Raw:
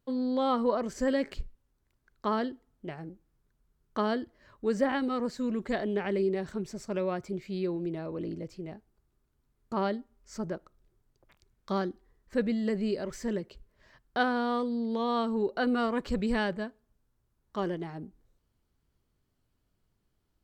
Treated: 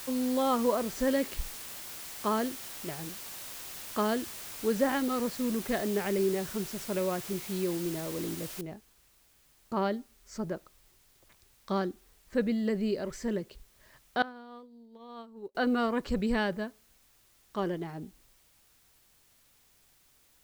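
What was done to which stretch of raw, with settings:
0:08.61: noise floor change −43 dB −65 dB
0:14.22–0:15.55: downward expander −18 dBFS

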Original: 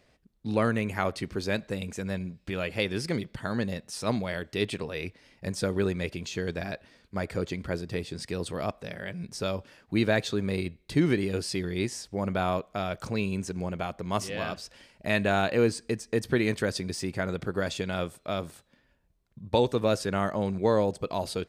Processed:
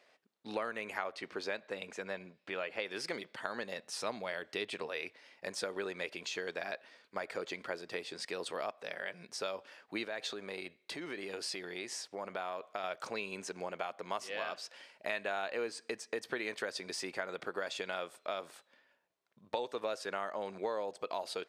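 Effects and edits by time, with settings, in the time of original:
0:00.97–0:02.84: low-pass filter 5,400 Hz → 2,700 Hz 6 dB per octave
0:03.78–0:04.87: low-shelf EQ 190 Hz +8.5 dB
0:10.04–0:12.84: downward compressor, threshold −30 dBFS
whole clip: high-pass filter 570 Hz 12 dB per octave; high-shelf EQ 6,900 Hz −10.5 dB; downward compressor 4 to 1, threshold −36 dBFS; level +1.5 dB

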